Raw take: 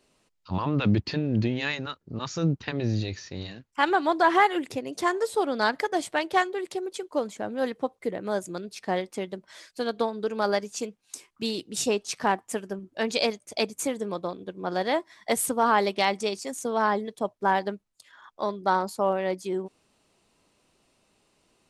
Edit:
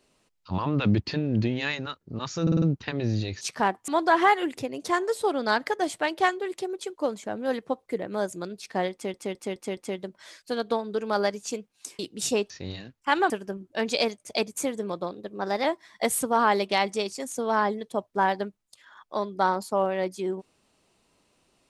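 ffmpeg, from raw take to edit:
-filter_complex "[0:a]asplit=16[a][b][c][d][e][f][g][h][i][j][k][l][m][n][o][p];[a]atrim=end=2.472[q];[b]atrim=start=2.418:end=2.472[r];[c]atrim=start=2.418:end=2.472[s];[d]atrim=start=2.418:end=2.472[t];[e]atrim=start=2.418:end=3.212[u];[f]atrim=start=12.048:end=12.522[v];[g]atrim=start=4.008:end=9.272[w];[h]atrim=start=9.058:end=9.272[x];[i]atrim=start=9.058:end=9.272[y];[j]atrim=start=9.058:end=9.272[z];[k]atrim=start=9.058:end=11.282[aa];[l]atrim=start=11.538:end=12.052[ab];[m]atrim=start=3.208:end=4.012[ac];[n]atrim=start=12.518:end=14.344[ad];[o]atrim=start=14.34:end=14.91,asetpts=PTS-STARTPTS,asetrate=48069,aresample=44100,atrim=end_sample=23061,asetpts=PTS-STARTPTS[ae];[p]atrim=start=14.906[af];[q][r]acrossfade=d=0.004:c1=hsin:c2=hsin[ag];[ag][s]acrossfade=d=0.004:c1=hsin:c2=hsin[ah];[ah][t]acrossfade=d=0.004:c1=hsin:c2=hsin[ai];[ai][u]acrossfade=d=0.004:c1=hsin:c2=hsin[aj];[aj][v]acrossfade=d=0.004:c1=hsin:c2=hsin[ak];[ak][w]acrossfade=d=0.004:c1=hsin:c2=hsin[al];[al][x]acrossfade=d=0.004:c1=hsin:c2=hsin[am];[am][y]acrossfade=d=0.004:c1=hsin:c2=hsin[an];[an][z]acrossfade=d=0.004:c1=hsin:c2=hsin[ao];[ao][aa]acrossfade=d=0.004:c1=hsin:c2=hsin[ap];[ap][ab]acrossfade=d=0.004:c1=hsin:c2=hsin[aq];[aq][ac]acrossfade=d=0.004:c1=hsin:c2=hsin[ar];[ar][ad]acrossfade=d=0.004:c1=hsin:c2=hsin[as];[as][ae]acrossfade=d=0.004:c1=hsin:c2=hsin[at];[at][af]acrossfade=d=0.004:c1=hsin:c2=hsin"

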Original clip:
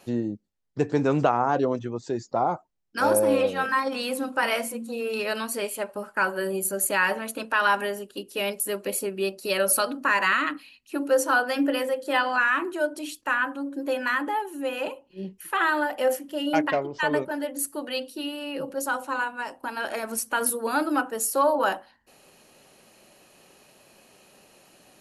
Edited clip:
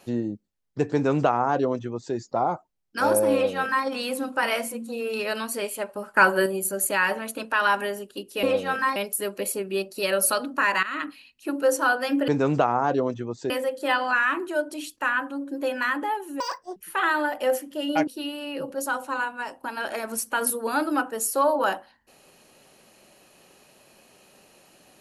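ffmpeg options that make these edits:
-filter_complex "[0:a]asplit=11[a][b][c][d][e][f][g][h][i][j][k];[a]atrim=end=6.142[l];[b]atrim=start=6.138:end=6.462,asetpts=PTS-STARTPTS,volume=7dB[m];[c]atrim=start=6.458:end=8.432[n];[d]atrim=start=3.328:end=3.862[o];[e]atrim=start=8.428:end=10.3,asetpts=PTS-STARTPTS,afade=t=out:st=1.868:d=0.004:c=hsin:silence=0.149624[p];[f]atrim=start=10.3:end=11.752,asetpts=PTS-STARTPTS,afade=t=in:d=0.25:silence=0.149624[q];[g]atrim=start=0.928:end=2.152[r];[h]atrim=start=11.748:end=14.654[s];[i]atrim=start=14.65:end=15.34,asetpts=PTS-STARTPTS,asetrate=83790,aresample=44100,atrim=end_sample=16015,asetpts=PTS-STARTPTS[t];[j]atrim=start=15.336:end=16.652[u];[k]atrim=start=18.068[v];[l][m]acrossfade=d=0.004:c1=hsin:c2=hsin[w];[w][n]acrossfade=d=0.004:c1=hsin:c2=hsin[x];[x][o]acrossfade=d=0.004:c1=hsin:c2=hsin[y];[p][q]concat=n=2:v=0:a=1[z];[y][z]acrossfade=d=0.004:c1=hsin:c2=hsin[aa];[aa][r]acrossfade=d=0.004:c1=hsin:c2=hsin[ab];[ab][s]acrossfade=d=0.004:c1=hsin:c2=hsin[ac];[ac][t]acrossfade=d=0.004:c1=hsin:c2=hsin[ad];[ad][u]acrossfade=d=0.004:c1=hsin:c2=hsin[ae];[ae][v]acrossfade=d=0.004:c1=hsin:c2=hsin"

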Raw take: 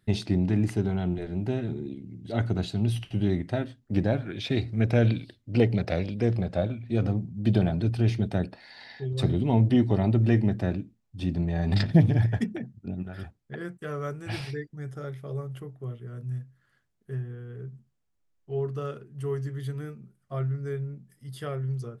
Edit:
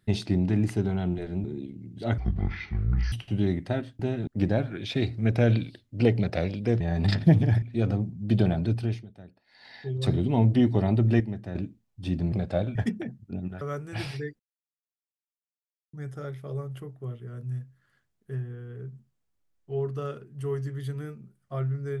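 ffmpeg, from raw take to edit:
-filter_complex "[0:a]asplit=16[a][b][c][d][e][f][g][h][i][j][k][l][m][n][o][p];[a]atrim=end=1.442[q];[b]atrim=start=1.718:end=2.464[r];[c]atrim=start=2.46:end=2.95,asetpts=PTS-STARTPTS,asetrate=22932,aresample=44100[s];[d]atrim=start=2.946:end=3.822[t];[e]atrim=start=1.438:end=1.722[u];[f]atrim=start=3.818:end=6.352[v];[g]atrim=start=11.478:end=12.302[w];[h]atrim=start=6.778:end=8.22,asetpts=PTS-STARTPTS,afade=t=out:st=1.102:d=0.34:silence=0.0944061[x];[i]atrim=start=8.22:end=8.61,asetpts=PTS-STARTPTS,volume=-20.5dB[y];[j]atrim=start=8.61:end=10.362,asetpts=PTS-STARTPTS,afade=t=in:d=0.34:silence=0.0944061[z];[k]atrim=start=10.358:end=10.712,asetpts=PTS-STARTPTS,volume=-9dB[aa];[l]atrim=start=10.708:end=11.482[ab];[m]atrim=start=6.348:end=6.782[ac];[n]atrim=start=12.298:end=13.162[ad];[o]atrim=start=13.948:end=14.73,asetpts=PTS-STARTPTS,afade=t=out:st=0.778:d=0.004:c=hsin,apad=pad_dur=1.54[ae];[p]atrim=start=14.73,asetpts=PTS-STARTPTS,afade=t=in:d=0.004:c=hsin[af];[q][r]acrossfade=d=0.004:c1=hsin:c2=hsin[ag];[ag][s]acrossfade=d=0.004:c1=hsin:c2=hsin[ah];[ah][t]acrossfade=d=0.004:c1=hsin:c2=hsin[ai];[ai][u]acrossfade=d=0.004:c1=hsin:c2=hsin[aj];[aj][v]acrossfade=d=0.004:c1=hsin:c2=hsin[ak];[ak][w]acrossfade=d=0.004:c1=hsin:c2=hsin[al];[x][y][z]concat=n=3:v=0:a=1[am];[al][am]acrossfade=d=0.004:c1=hsin:c2=hsin[an];[an][aa]acrossfade=d=0.004:c1=hsin:c2=hsin[ao];[ao][ab]acrossfade=d=0.004:c1=hsin:c2=hsin[ap];[ap][ac]acrossfade=d=0.004:c1=hsin:c2=hsin[aq];[aq][ad]acrossfade=d=0.004:c1=hsin:c2=hsin[ar];[ae][af]concat=n=2:v=0:a=1[as];[ar][as]acrossfade=d=0.004:c1=hsin:c2=hsin"

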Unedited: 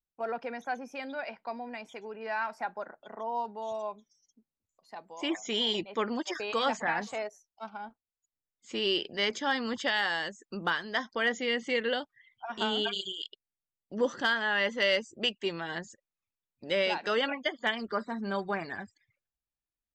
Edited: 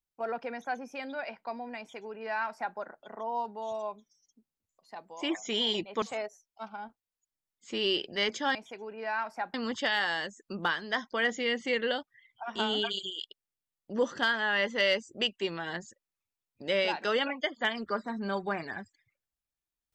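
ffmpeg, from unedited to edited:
-filter_complex "[0:a]asplit=4[a][b][c][d];[a]atrim=end=6.022[e];[b]atrim=start=7.028:end=9.562[f];[c]atrim=start=1.778:end=2.772[g];[d]atrim=start=9.558[h];[e][f]acrossfade=d=0.004:c1=hsin:c2=hsin[i];[i][g]acrossfade=d=0.004:c1=hsin:c2=hsin[j];[j][h]acrossfade=d=0.004:c1=hsin:c2=hsin"

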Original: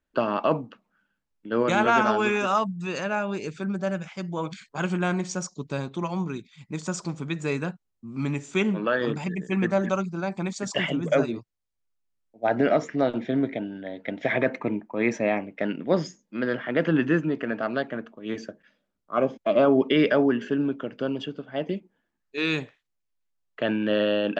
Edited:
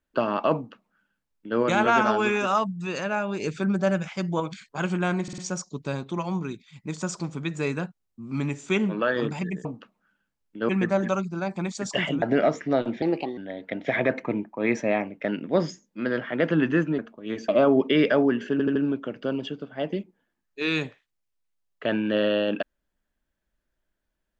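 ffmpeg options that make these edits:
-filter_complex "[0:a]asplit=16[a][b][c][d][e][f][g][h][i][j][k][l][m][n][o][p];[a]atrim=end=3.402[q];[b]atrim=start=3.398:end=4.402,asetpts=PTS-STARTPTS,volume=4.5dB[r];[c]atrim=start=4.398:end=5.282[s];[d]atrim=start=5.228:end=5.282[t];[e]atrim=start=5.228:end=5.282[u];[f]atrim=start=5.228:end=9.502[v];[g]atrim=start=0.548:end=1.592[w];[h]atrim=start=9.498:end=11.032[x];[i]atrim=start=12.498:end=13.304[y];[j]atrim=start=13.3:end=13.74,asetpts=PTS-STARTPTS,asetrate=54684,aresample=44100,atrim=end_sample=15648,asetpts=PTS-STARTPTS[z];[k]atrim=start=13.736:end=17.352[aa];[l]atrim=start=17.978:end=18.482[ab];[m]atrim=start=19.488:end=20.602[ac];[n]atrim=start=20.518:end=20.602[ad];[o]atrim=start=20.518:end=20.602[ae];[p]atrim=start=20.518[af];[q][r]acrossfade=d=0.004:c1=hsin:c2=hsin[ag];[ag][s]acrossfade=d=0.004:c1=hsin:c2=hsin[ah];[ah][t]acrossfade=d=0.004:c1=hsin:c2=hsin[ai];[ai][u]acrossfade=d=0.004:c1=hsin:c2=hsin[aj];[aj][v]acrossfade=d=0.004:c1=hsin:c2=hsin[ak];[ak][w]acrossfade=d=0.004:c1=hsin:c2=hsin[al];[al][x]acrossfade=d=0.004:c1=hsin:c2=hsin[am];[am][y]acrossfade=d=0.004:c1=hsin:c2=hsin[an];[an][z]acrossfade=d=0.004:c1=hsin:c2=hsin[ao];[ao][aa]acrossfade=d=0.004:c1=hsin:c2=hsin[ap];[ap][ab]acrossfade=d=0.004:c1=hsin:c2=hsin[aq];[aq][ac]acrossfade=d=0.004:c1=hsin:c2=hsin[ar];[ar][ad]acrossfade=d=0.004:c1=hsin:c2=hsin[as];[as][ae]acrossfade=d=0.004:c1=hsin:c2=hsin[at];[at][af]acrossfade=d=0.004:c1=hsin:c2=hsin"

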